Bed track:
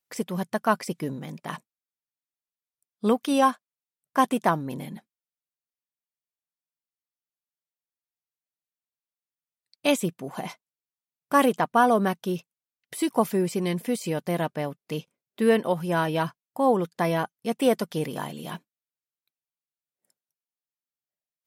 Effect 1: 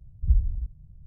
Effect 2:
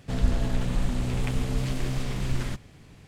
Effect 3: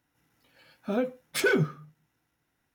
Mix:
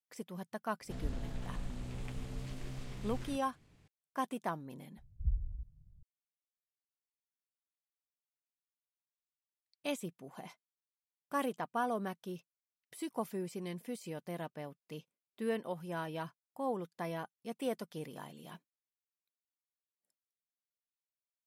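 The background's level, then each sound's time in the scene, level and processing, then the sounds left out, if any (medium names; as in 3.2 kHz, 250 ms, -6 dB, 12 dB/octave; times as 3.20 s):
bed track -15 dB
0.81 s: add 2 -15 dB
4.97 s: add 1 -12.5 dB
not used: 3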